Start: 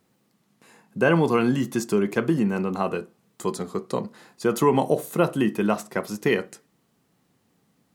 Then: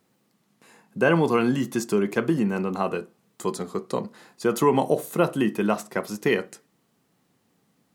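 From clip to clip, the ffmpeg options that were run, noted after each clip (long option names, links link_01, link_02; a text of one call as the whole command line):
ffmpeg -i in.wav -af "lowshelf=frequency=81:gain=-8" out.wav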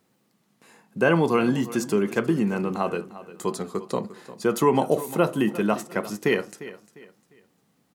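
ffmpeg -i in.wav -af "aecho=1:1:351|702|1053:0.158|0.0523|0.0173" out.wav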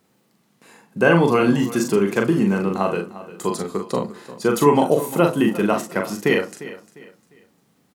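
ffmpeg -i in.wav -filter_complex "[0:a]asplit=2[link_01][link_02];[link_02]adelay=41,volume=-4.5dB[link_03];[link_01][link_03]amix=inputs=2:normalize=0,volume=3.5dB" out.wav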